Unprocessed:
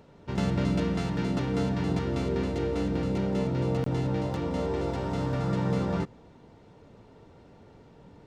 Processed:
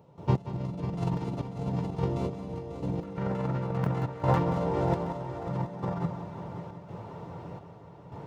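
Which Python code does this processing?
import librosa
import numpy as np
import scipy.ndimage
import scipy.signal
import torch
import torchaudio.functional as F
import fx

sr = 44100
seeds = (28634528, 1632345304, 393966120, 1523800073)

y = scipy.signal.sosfilt(scipy.signal.butter(2, 88.0, 'highpass', fs=sr, output='sos'), x)
y = fx.comb_fb(y, sr, f0_hz=170.0, decay_s=0.21, harmonics='all', damping=0.0, mix_pct=50)
y = fx.over_compress(y, sr, threshold_db=-37.0, ratio=-0.5)
y = fx.graphic_eq(y, sr, hz=(125, 250, 1000, 4000, 8000), db=(7, -5, 8, -5, -5))
y = fx.step_gate(y, sr, bpm=85, pattern='.x.xxxxx.xxxx..', floor_db=-12.0, edge_ms=4.5)
y = fx.peak_eq(y, sr, hz=1600.0, db=fx.steps((0.0, -13.0), (3.03, 3.0), (4.39, -4.0)), octaves=1.1)
y = fx.echo_heads(y, sr, ms=181, heads='first and third', feedback_pct=59, wet_db=-12.0)
y = F.gain(torch.from_numpy(y), 8.0).numpy()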